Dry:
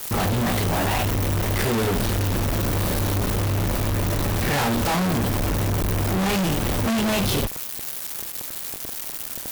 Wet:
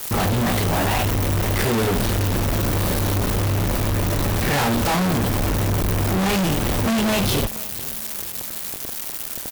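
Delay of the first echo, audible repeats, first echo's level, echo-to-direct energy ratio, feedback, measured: 0.483 s, 3, -20.5 dB, -19.0 dB, 55%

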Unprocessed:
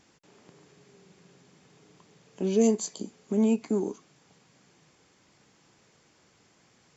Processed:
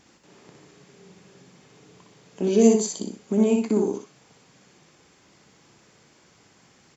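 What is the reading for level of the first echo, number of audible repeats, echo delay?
-3.5 dB, 2, 61 ms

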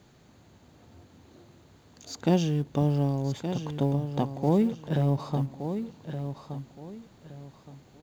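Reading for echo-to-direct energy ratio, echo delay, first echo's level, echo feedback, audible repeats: -8.5 dB, 1.17 s, -9.0 dB, 28%, 3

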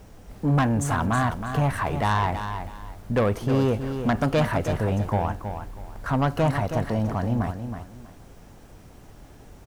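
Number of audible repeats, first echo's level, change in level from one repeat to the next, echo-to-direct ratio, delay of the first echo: 2, -8.5 dB, -11.5 dB, -8.0 dB, 0.321 s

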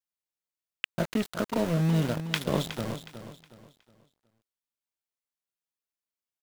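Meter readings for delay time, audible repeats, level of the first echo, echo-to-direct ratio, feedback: 0.366 s, 3, -11.0 dB, -10.5 dB, 34%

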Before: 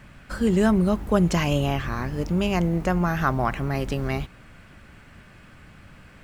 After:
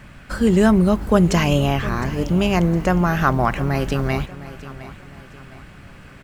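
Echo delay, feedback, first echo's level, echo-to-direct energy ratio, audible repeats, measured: 0.71 s, 41%, -16.0 dB, -15.0 dB, 3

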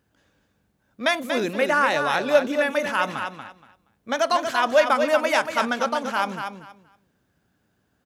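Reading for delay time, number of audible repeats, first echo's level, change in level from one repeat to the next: 0.236 s, 3, -7.0 dB, -14.0 dB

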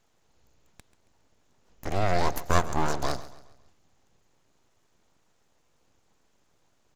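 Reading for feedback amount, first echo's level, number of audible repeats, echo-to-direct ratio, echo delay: 42%, -16.5 dB, 3, -15.5 dB, 0.137 s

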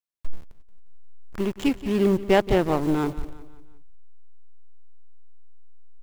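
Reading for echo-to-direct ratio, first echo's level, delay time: -15.0 dB, -16.0 dB, 0.177 s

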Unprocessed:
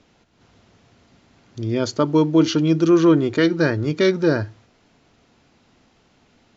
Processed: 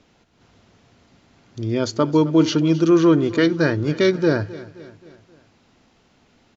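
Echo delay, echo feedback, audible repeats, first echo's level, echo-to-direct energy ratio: 0.264 s, 51%, 3, -18.0 dB, -16.5 dB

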